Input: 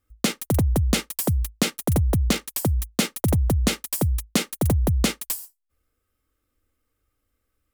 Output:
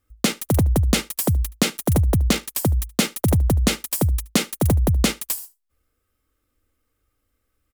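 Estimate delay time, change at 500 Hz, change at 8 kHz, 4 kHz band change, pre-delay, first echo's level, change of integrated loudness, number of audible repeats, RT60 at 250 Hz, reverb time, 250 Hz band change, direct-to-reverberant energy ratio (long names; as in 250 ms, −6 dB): 74 ms, +2.5 dB, +2.5 dB, +2.5 dB, no reverb audible, −22.5 dB, +2.5 dB, 1, no reverb audible, no reverb audible, +2.5 dB, no reverb audible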